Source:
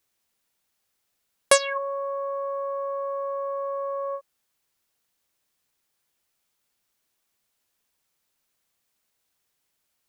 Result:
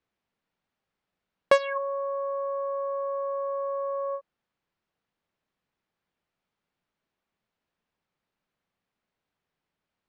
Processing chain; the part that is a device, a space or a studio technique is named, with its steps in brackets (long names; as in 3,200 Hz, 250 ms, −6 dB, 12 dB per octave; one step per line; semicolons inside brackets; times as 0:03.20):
phone in a pocket (low-pass filter 3,700 Hz 12 dB per octave; parametric band 180 Hz +5.5 dB 0.61 octaves; high-shelf EQ 2,300 Hz −9 dB)